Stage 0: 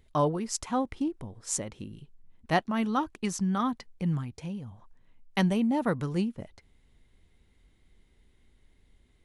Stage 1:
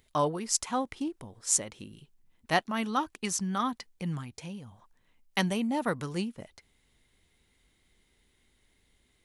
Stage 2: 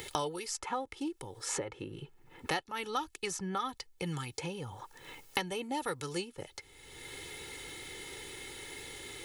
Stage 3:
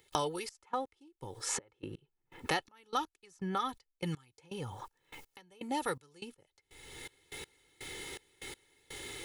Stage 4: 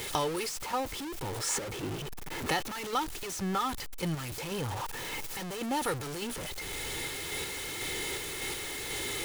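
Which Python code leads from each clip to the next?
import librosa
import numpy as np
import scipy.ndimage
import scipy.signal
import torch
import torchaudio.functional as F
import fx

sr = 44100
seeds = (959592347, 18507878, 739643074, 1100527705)

y1 = fx.tilt_eq(x, sr, slope=2.0)
y2 = y1 + 0.78 * np.pad(y1, (int(2.3 * sr / 1000.0), 0))[:len(y1)]
y2 = fx.band_squash(y2, sr, depth_pct=100)
y2 = F.gain(torch.from_numpy(y2), -6.0).numpy()
y3 = fx.step_gate(y2, sr, bpm=123, pattern='.xxx..x..', floor_db=-24.0, edge_ms=4.5)
y3 = F.gain(torch.from_numpy(y3), 1.0).numpy()
y4 = y3 + 0.5 * 10.0 ** (-32.0 / 20.0) * np.sign(y3)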